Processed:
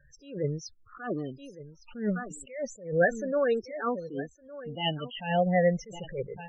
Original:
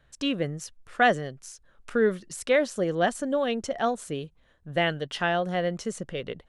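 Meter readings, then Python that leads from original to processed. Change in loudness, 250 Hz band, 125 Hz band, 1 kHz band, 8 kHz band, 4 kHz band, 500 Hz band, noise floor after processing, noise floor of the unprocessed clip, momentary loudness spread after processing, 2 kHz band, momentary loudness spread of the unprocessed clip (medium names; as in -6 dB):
-3.0 dB, -2.5 dB, +1.0 dB, -6.0 dB, -8.0 dB, -4.0 dB, -2.5 dB, -59 dBFS, -63 dBFS, 18 LU, -5.5 dB, 13 LU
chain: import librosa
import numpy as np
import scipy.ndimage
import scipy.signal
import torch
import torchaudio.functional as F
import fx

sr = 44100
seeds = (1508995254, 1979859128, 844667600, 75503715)

y = fx.spec_ripple(x, sr, per_octave=0.54, drift_hz=-0.33, depth_db=13)
y = fx.peak_eq(y, sr, hz=9600.0, db=-9.0, octaves=0.57)
y = y + 10.0 ** (-16.0 / 20.0) * np.pad(y, (int(1161 * sr / 1000.0), 0))[:len(y)]
y = fx.spec_topn(y, sr, count=16)
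y = fx.notch(y, sr, hz=680.0, q=12.0)
y = fx.attack_slew(y, sr, db_per_s=130.0)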